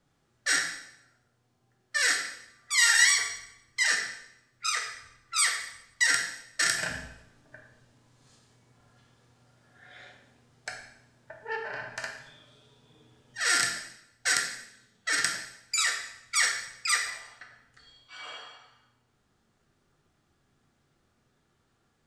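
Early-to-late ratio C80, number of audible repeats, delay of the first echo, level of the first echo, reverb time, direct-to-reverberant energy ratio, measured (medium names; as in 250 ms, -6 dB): 8.5 dB, no echo, no echo, no echo, 0.80 s, 1.0 dB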